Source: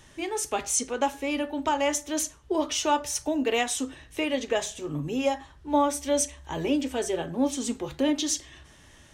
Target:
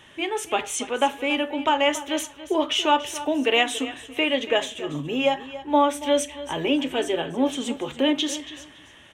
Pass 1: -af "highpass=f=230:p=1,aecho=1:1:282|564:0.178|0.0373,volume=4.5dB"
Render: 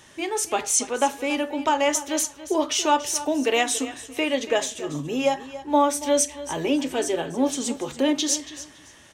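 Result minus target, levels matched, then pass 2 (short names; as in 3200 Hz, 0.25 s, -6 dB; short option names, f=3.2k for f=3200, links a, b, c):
8000 Hz band +8.5 dB
-af "highpass=f=230:p=1,highshelf=f=3.9k:t=q:w=3:g=-6.5,aecho=1:1:282|564:0.178|0.0373,volume=4.5dB"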